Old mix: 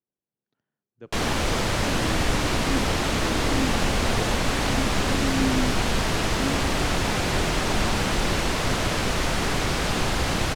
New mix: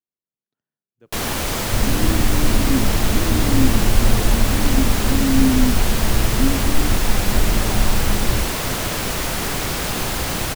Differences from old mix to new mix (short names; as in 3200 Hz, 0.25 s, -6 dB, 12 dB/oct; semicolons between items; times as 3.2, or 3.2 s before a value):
speech -8.0 dB; second sound: add tilt -4.5 dB/oct; master: remove air absorption 61 m